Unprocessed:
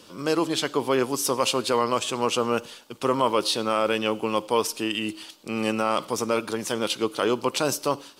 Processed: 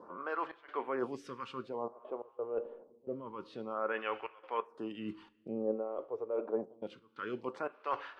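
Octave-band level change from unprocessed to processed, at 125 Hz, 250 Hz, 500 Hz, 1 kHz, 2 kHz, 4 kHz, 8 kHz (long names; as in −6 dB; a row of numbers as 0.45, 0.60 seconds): −18.5 dB, −15.0 dB, −12.5 dB, −13.5 dB, −13.5 dB, −27.5 dB, below −35 dB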